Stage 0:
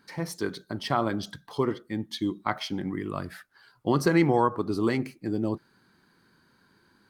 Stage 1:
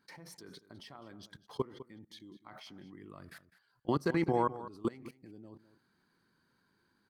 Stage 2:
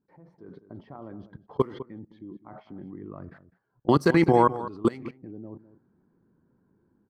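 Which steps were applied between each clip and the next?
output level in coarse steps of 23 dB; slap from a distant wall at 35 metres, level −15 dB; level −5.5 dB
low-pass that shuts in the quiet parts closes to 490 Hz, open at −31 dBFS; automatic gain control gain up to 11 dB

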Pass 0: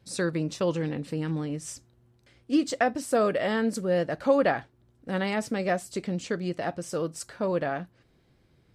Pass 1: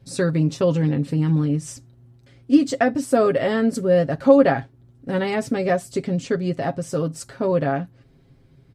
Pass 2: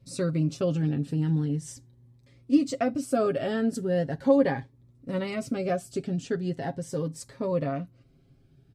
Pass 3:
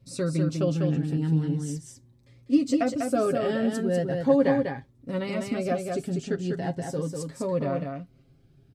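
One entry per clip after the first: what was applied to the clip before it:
low-shelf EQ 420 Hz +9.5 dB; comb filter 7.4 ms, depth 62%; level +1 dB
phaser whose notches keep moving one way rising 0.39 Hz; level −6 dB
single-tap delay 197 ms −4.5 dB

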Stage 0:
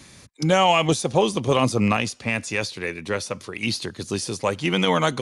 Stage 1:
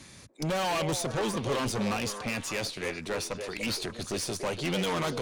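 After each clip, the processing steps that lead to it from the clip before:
tube saturation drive 27 dB, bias 0.6
echo through a band-pass that steps 290 ms, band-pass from 480 Hz, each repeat 1.4 octaves, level −4.5 dB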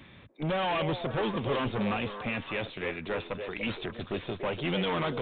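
downsampling to 8,000 Hz

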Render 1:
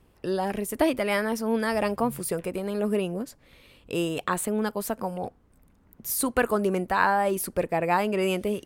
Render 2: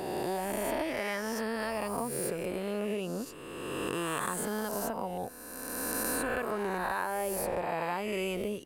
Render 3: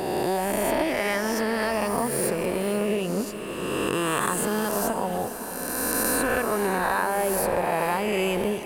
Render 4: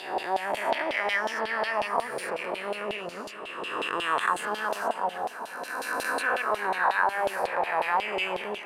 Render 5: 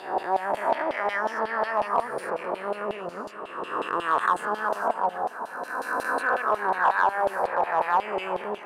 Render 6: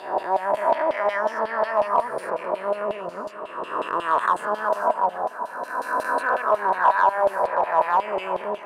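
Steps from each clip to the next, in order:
peak hold with a rise ahead of every peak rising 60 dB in 2.02 s; downward compressor, threshold −23 dBFS, peak gain reduction 9.5 dB; level −6 dB
feedback delay with all-pass diffusion 502 ms, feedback 47%, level −11 dB; level +8 dB
auto-filter band-pass saw down 5.5 Hz 700–3,600 Hz; level +6 dB
high shelf with overshoot 1,800 Hz −8.5 dB, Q 1.5; in parallel at −6 dB: hard clipping −17.5 dBFS, distortion −17 dB; on the sum: level −1.5 dB
hollow resonant body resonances 620/980 Hz, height 9 dB

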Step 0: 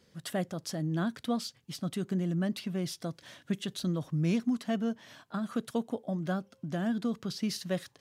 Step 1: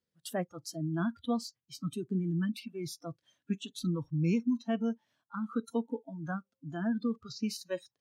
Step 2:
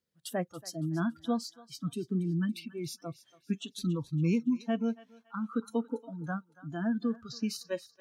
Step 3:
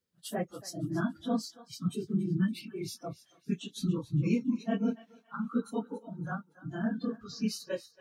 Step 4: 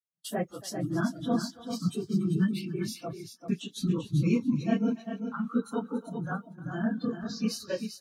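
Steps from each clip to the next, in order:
noise reduction from a noise print of the clip's start 25 dB; dynamic equaliser 4,300 Hz, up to −4 dB, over −52 dBFS, Q 1.1
feedback echo with a high-pass in the loop 281 ms, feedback 39%, high-pass 870 Hz, level −16 dB; level +1 dB
random phases in long frames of 50 ms
noise gate −55 dBFS, range −30 dB; on a send: single-tap delay 391 ms −8 dB; on the sum: level +2.5 dB

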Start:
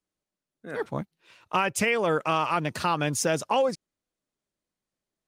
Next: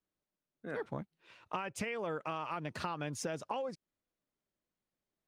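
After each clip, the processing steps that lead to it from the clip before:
high-shelf EQ 5,800 Hz −12 dB
downward compressor, threshold −33 dBFS, peak gain reduction 12.5 dB
level −2.5 dB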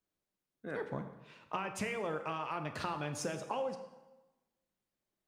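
dense smooth reverb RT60 1.1 s, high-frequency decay 0.8×, DRR 6.5 dB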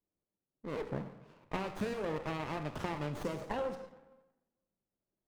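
low-pass that shuts in the quiet parts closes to 850 Hz, open at −37 dBFS
windowed peak hold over 17 samples
level +1 dB

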